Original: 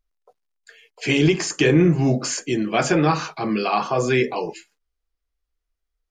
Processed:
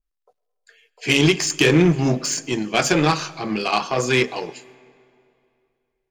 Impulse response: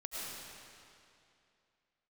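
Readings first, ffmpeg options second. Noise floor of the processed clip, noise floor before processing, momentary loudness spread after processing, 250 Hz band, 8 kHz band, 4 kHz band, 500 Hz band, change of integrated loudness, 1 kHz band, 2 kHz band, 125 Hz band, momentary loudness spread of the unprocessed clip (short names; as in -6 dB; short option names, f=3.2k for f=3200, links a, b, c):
-77 dBFS, -80 dBFS, 10 LU, -0.5 dB, +4.0 dB, +5.5 dB, -0.5 dB, +1.0 dB, -0.5 dB, +3.5 dB, -0.5 dB, 9 LU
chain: -filter_complex "[0:a]aeval=exprs='0.531*(cos(1*acos(clip(val(0)/0.531,-1,1)))-cos(1*PI/2))+0.0335*(cos(7*acos(clip(val(0)/0.531,-1,1)))-cos(7*PI/2))':c=same,asplit=2[a][b];[1:a]atrim=start_sample=2205[c];[b][c]afir=irnorm=-1:irlink=0,volume=-21dB[d];[a][d]amix=inputs=2:normalize=0,adynamicequalizer=threshold=0.0158:dfrequency=2300:dqfactor=0.7:tfrequency=2300:tqfactor=0.7:attack=5:release=100:ratio=0.375:range=4:mode=boostabove:tftype=highshelf"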